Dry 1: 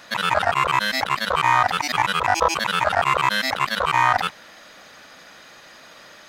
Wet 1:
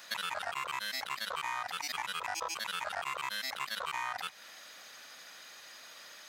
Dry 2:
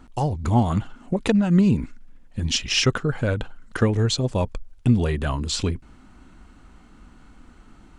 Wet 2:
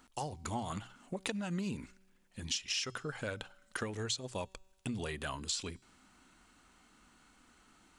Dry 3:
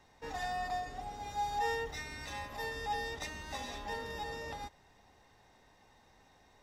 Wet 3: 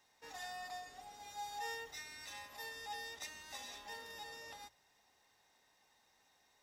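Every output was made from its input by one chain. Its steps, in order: tilt EQ +3 dB/octave; hum notches 60/120 Hz; compression 6:1, threshold -24 dBFS; feedback comb 190 Hz, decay 1.5 s, mix 30%; trim -6.5 dB

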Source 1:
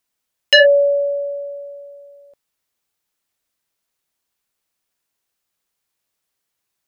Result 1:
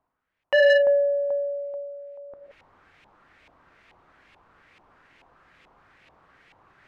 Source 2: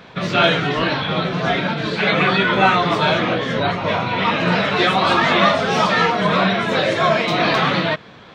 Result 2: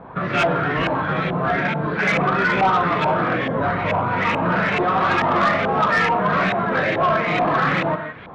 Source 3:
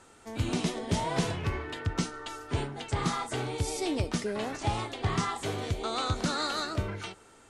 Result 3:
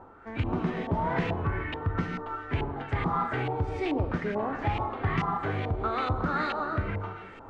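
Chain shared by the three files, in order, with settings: bass shelf 220 Hz +4.5 dB; gated-style reverb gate 190 ms flat, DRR 6.5 dB; in parallel at 0 dB: compression 6:1, threshold -27 dBFS; on the sum: LFO low-pass saw up 2.3 Hz 840–2500 Hz; saturation -5.5 dBFS; reverse; upward compressor, threshold -32 dBFS; reverse; trim -6 dB

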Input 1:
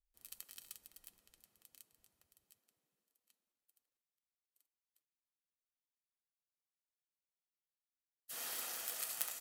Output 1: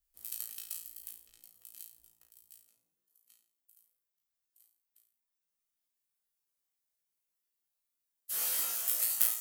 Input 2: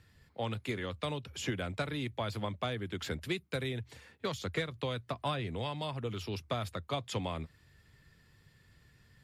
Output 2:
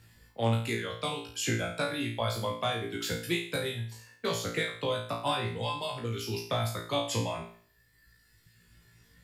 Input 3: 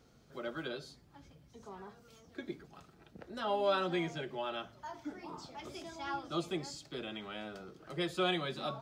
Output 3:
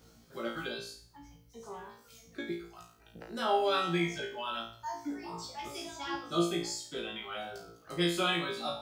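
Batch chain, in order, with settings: reverb removal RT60 1.9 s; treble shelf 7.2 kHz +11 dB; flutter echo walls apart 3 m, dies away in 0.49 s; trim +1.5 dB

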